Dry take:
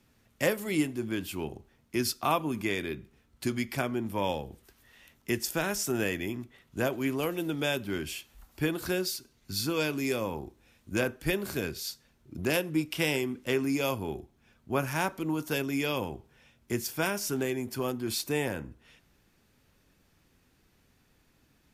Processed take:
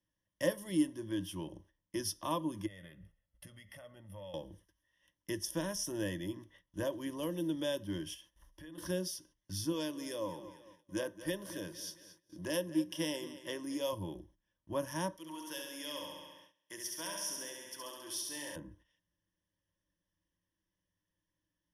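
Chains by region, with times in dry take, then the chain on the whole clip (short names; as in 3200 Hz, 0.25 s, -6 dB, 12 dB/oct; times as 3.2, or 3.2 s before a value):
2.66–4.34 band shelf 5300 Hz -8 dB 1.3 oct + comb 1.5 ms, depth 86% + compressor 5:1, threshold -43 dBFS
8.14–8.78 notches 50/100/150/200/250/300/350/400 Hz + compressor 10:1, threshold -43 dBFS
9.72–13.93 HPF 260 Hz 6 dB/oct + feedback echo 0.225 s, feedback 42%, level -15 dB
15.16–18.56 HPF 1500 Hz 6 dB/oct + flutter echo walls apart 11.7 m, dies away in 1.2 s
whole clip: dynamic EQ 1900 Hz, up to -7 dB, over -45 dBFS, Q 0.82; gate -54 dBFS, range -16 dB; ripple EQ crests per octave 1.2, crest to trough 16 dB; gain -8.5 dB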